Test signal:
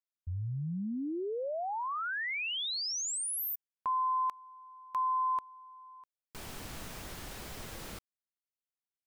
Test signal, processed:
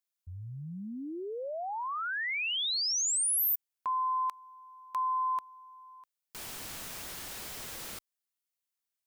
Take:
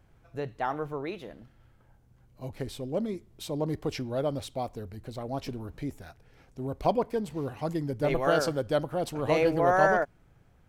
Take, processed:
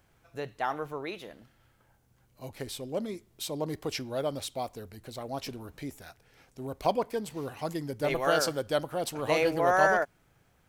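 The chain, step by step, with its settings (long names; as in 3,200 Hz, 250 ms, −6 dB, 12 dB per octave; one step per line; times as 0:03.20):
spectral tilt +2 dB per octave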